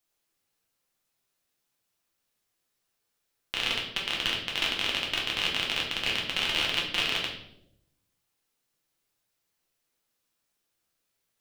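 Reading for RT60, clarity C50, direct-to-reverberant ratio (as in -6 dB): 0.80 s, 5.0 dB, -2.5 dB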